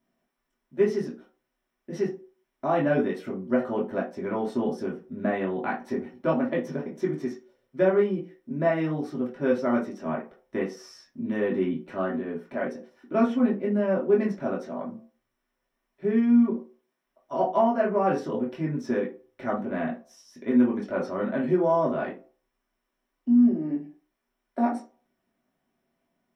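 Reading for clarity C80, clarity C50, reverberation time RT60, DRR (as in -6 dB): 15.5 dB, 9.5 dB, 0.40 s, -5.0 dB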